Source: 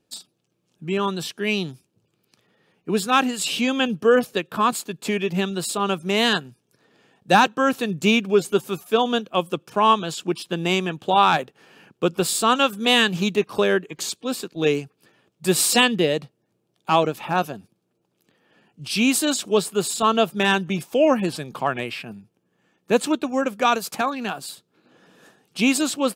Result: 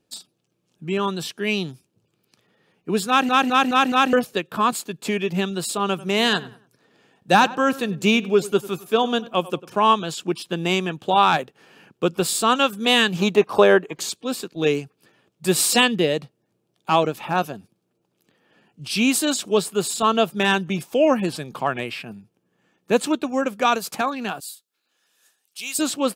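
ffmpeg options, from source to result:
ffmpeg -i in.wav -filter_complex "[0:a]asettb=1/sr,asplit=3[link_01][link_02][link_03];[link_01]atrim=end=5.874[link_04];[link_02]atrim=start=5.87:end=9.84,asetpts=PTS-STARTPTS,afade=type=in:duration=0.004:curve=qsin,afade=type=out:start_time=3.966:duration=0.004:curve=qsin,asplit=2[link_05][link_06];[link_06]adelay=96,lowpass=frequency=2500:poles=1,volume=-18dB,asplit=2[link_07][link_08];[link_08]adelay=96,lowpass=frequency=2500:poles=1,volume=0.37,asplit=2[link_09][link_10];[link_10]adelay=96,lowpass=frequency=2500:poles=1,volume=0.37[link_11];[link_05][link_07][link_09][link_11]amix=inputs=4:normalize=0,atrim=end_sample=175077[link_12];[link_03]atrim=start=9.836[link_13];[link_04][link_12]acrossfade=duration=0.004:curve1=hsin:curve2=qsin[link_14];[link_14][link_13]acrossfade=duration=0.004:curve1=qsin:curve2=hsin,asettb=1/sr,asplit=3[link_15][link_16][link_17];[link_15]atrim=end=13.194[link_18];[link_16]atrim=start=13.19:end=13.98,asetpts=PTS-STARTPTS,afade=type=in:duration=0.004:curve=qsin,afade=type=out:start_time=0.786:duration=0.004:curve=qsin,equalizer=frequency=780:width=0.75:gain=10[link_19];[link_17]atrim=start=13.976[link_20];[link_18][link_19]acrossfade=duration=0.004:curve1=hsin:curve2=qsin[link_21];[link_21][link_20]acrossfade=duration=0.004:curve1=qsin:curve2=hsin,asettb=1/sr,asplit=3[link_22][link_23][link_24];[link_22]atrim=end=24.404[link_25];[link_23]atrim=start=24.4:end=25.79,asetpts=PTS-STARTPTS,afade=type=in:duration=0.004:curve=qsin,afade=type=out:start_time=1.386:duration=0.004:curve=qsin,aderivative[link_26];[link_24]atrim=start=25.786[link_27];[link_25][link_26]acrossfade=duration=0.004:curve1=hsin:curve2=qsin[link_28];[link_28][link_27]acrossfade=duration=0.004:curve1=qsin:curve2=hsin,asplit=6[link_29][link_30][link_31][link_32][link_33][link_34];[link_29]atrim=end=3.292[link_35];[link_30]atrim=start=3.078:end=3.292[link_36];[link_31]atrim=start=3.078:end=3.292[link_37];[link_32]atrim=start=3.078:end=3.292[link_38];[link_33]atrim=start=3.078:end=3.292[link_39];[link_34]atrim=start=4.128[link_40];[link_35][link_36]acrossfade=duration=0.004:curve1=hsin:curve2=hsin[link_41];[link_41][link_37]acrossfade=duration=0.004:curve1=hsin:curve2=hsin[link_42];[link_42][link_38]acrossfade=duration=0.004:curve1=hsin:curve2=hsin[link_43];[link_43][link_39]acrossfade=duration=0.004:curve1=hsin:curve2=hsin[link_44];[link_44][link_40]acrossfade=duration=0.004:curve1=hsin:curve2=hsin" out.wav

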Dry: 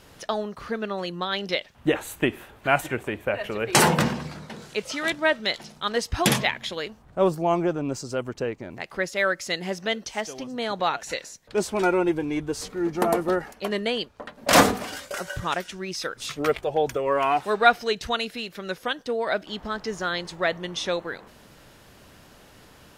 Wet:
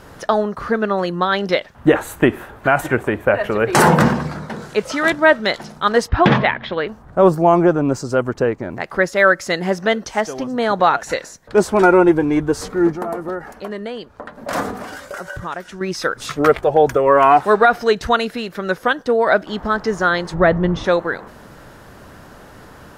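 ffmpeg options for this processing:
ffmpeg -i in.wav -filter_complex "[0:a]asplit=3[link_01][link_02][link_03];[link_01]afade=type=out:start_time=6.07:duration=0.02[link_04];[link_02]lowpass=frequency=3600:width=0.5412,lowpass=frequency=3600:width=1.3066,afade=type=in:start_time=6.07:duration=0.02,afade=type=out:start_time=6.87:duration=0.02[link_05];[link_03]afade=type=in:start_time=6.87:duration=0.02[link_06];[link_04][link_05][link_06]amix=inputs=3:normalize=0,asettb=1/sr,asplit=3[link_07][link_08][link_09];[link_07]atrim=end=12.924[link_10];[link_08]atrim=start=12.92:end=15.81,asetpts=PTS-STARTPTS,afade=type=in:duration=0.004:curve=qsin,afade=type=out:start_time=2.886:duration=0.004:curve=qsin,acompressor=threshold=-43dB:ratio=2:attack=3.2:release=140:knee=1:detection=peak[link_11];[link_09]atrim=start=15.806[link_12];[link_10][link_11]acrossfade=duration=0.004:curve1=hsin:curve2=qsin[link_13];[link_13][link_12]acrossfade=duration=0.004:curve1=qsin:curve2=hsin,asplit=3[link_14][link_15][link_16];[link_14]afade=type=out:start_time=20.33:duration=0.02[link_17];[link_15]aemphasis=mode=reproduction:type=riaa,afade=type=in:start_time=20.33:duration=0.02,afade=type=out:start_time=20.83:duration=0.02[link_18];[link_16]afade=type=in:start_time=20.83:duration=0.02[link_19];[link_17][link_18][link_19]amix=inputs=3:normalize=0,highshelf=frequency=2000:width_type=q:width=1.5:gain=-6.5,alimiter=level_in=11.5dB:limit=-1dB:release=50:level=0:latency=1,volume=-1dB" out.wav

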